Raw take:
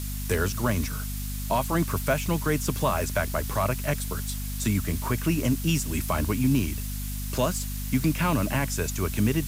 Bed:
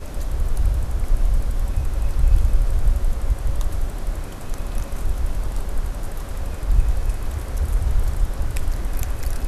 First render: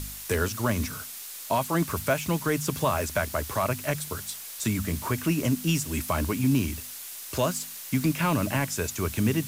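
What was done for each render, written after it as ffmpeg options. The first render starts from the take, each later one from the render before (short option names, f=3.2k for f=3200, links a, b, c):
-af "bandreject=f=50:t=h:w=4,bandreject=f=100:t=h:w=4,bandreject=f=150:t=h:w=4,bandreject=f=200:t=h:w=4,bandreject=f=250:t=h:w=4"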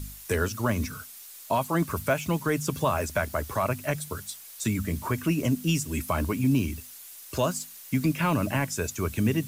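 -af "afftdn=nr=8:nf=-40"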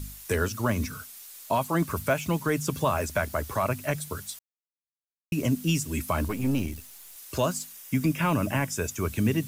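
-filter_complex "[0:a]asettb=1/sr,asplit=3[a][b][c];[a]atrim=end=6.284[d];[b]atrim=start=6.28:end=7.16,asetpts=PTS-STARTPTS,afade=t=in:d=0.004:c=qsin,afade=t=out:st=0.876:d=0.004:c=qsin,aeval=exprs='if(lt(val(0),0),0.447*val(0),val(0))':c=same[e];[c]atrim=start=7.156[f];[d][e]acrossfade=d=0.004:c1=hsin:c2=qsin[g];[g][f]acrossfade=d=0.004:c1=qsin:c2=hsin,asettb=1/sr,asplit=3[h][i][j];[h]atrim=end=7.724[k];[i]atrim=start=7.72:end=9.04,asetpts=PTS-STARTPTS,afade=t=in:d=0.004:c=qsin,afade=t=out:st=1.316:d=0.004:c=qsin,bandreject=f=4.2k:w=6.4[l];[j]atrim=start=9.036[m];[k][l]acrossfade=d=0.004:c1=hsin:c2=qsin[n];[n][m]acrossfade=d=0.004:c1=qsin:c2=hsin,asplit=3[o][p][q];[o]atrim=end=4.39,asetpts=PTS-STARTPTS,afade=t=out:st=4.386:d=0.004:c=hsin[r];[p]atrim=start=4.39:end=5.32,asetpts=PTS-STARTPTS,volume=0[s];[q]atrim=start=5.32,asetpts=PTS-STARTPTS,afade=t=in:d=0.004:c=hsin[t];[r][s][t]concat=n=3:v=0:a=1"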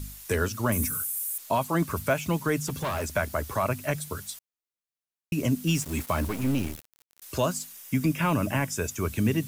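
-filter_complex "[0:a]asettb=1/sr,asplit=3[a][b][c];[a]atrim=end=0.724[d];[b]atrim=start=0.72:end=1.38,asetpts=PTS-STARTPTS,afade=t=in:d=0.004:c=qsin,afade=t=out:st=0.656:d=0.004:c=qsin,highshelf=f=6.9k:t=q:w=1.5:g=13[e];[c]atrim=start=1.376[f];[d][e]acrossfade=d=0.004:c1=hsin:c2=qsin[g];[g][f]acrossfade=d=0.004:c1=qsin:c2=hsin,asettb=1/sr,asplit=3[h][i][j];[h]atrim=end=2.684[k];[i]atrim=start=2.68:end=3.12,asetpts=PTS-STARTPTS,afade=t=in:d=0.004:c=qsin,afade=t=out:st=0.436:d=0.004:c=qsin,volume=26dB,asoftclip=hard,volume=-26dB[l];[j]atrim=start=3.116[m];[k][l]acrossfade=d=0.004:c1=hsin:c2=qsin[n];[n][m]acrossfade=d=0.004:c1=qsin:c2=hsin,asettb=1/sr,asplit=3[o][p][q];[o]atrim=end=5.674[r];[p]atrim=start=5.67:end=7.22,asetpts=PTS-STARTPTS,afade=t=in:d=0.004:c=qsin,afade=t=out:st=1.546:d=0.004:c=qsin,aeval=exprs='val(0)*gte(abs(val(0)),0.0168)':c=same[s];[q]atrim=start=7.216[t];[r][s]acrossfade=d=0.004:c1=hsin:c2=qsin[u];[u][t]acrossfade=d=0.004:c1=qsin:c2=hsin"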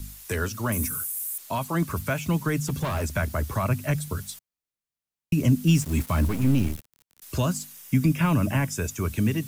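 -filter_complex "[0:a]acrossover=split=240|960|3500[a][b][c][d];[a]dynaudnorm=f=920:g=5:m=8dB[e];[b]alimiter=level_in=2.5dB:limit=-24dB:level=0:latency=1,volume=-2.5dB[f];[e][f][c][d]amix=inputs=4:normalize=0"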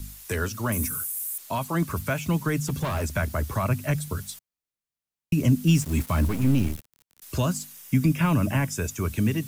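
-af anull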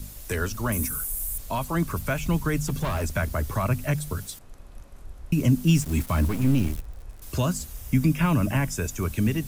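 -filter_complex "[1:a]volume=-19dB[a];[0:a][a]amix=inputs=2:normalize=0"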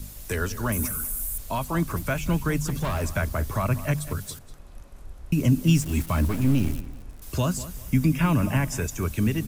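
-filter_complex "[0:a]asplit=2[a][b];[b]adelay=194,lowpass=f=4.3k:p=1,volume=-15dB,asplit=2[c][d];[d]adelay=194,lowpass=f=4.3k:p=1,volume=0.28,asplit=2[e][f];[f]adelay=194,lowpass=f=4.3k:p=1,volume=0.28[g];[a][c][e][g]amix=inputs=4:normalize=0"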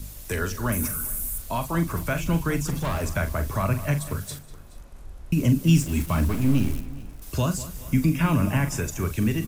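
-filter_complex "[0:a]asplit=2[a][b];[b]adelay=42,volume=-10dB[c];[a][c]amix=inputs=2:normalize=0,aecho=1:1:424:0.0891"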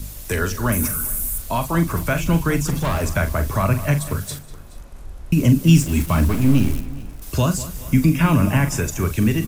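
-af "volume=5.5dB"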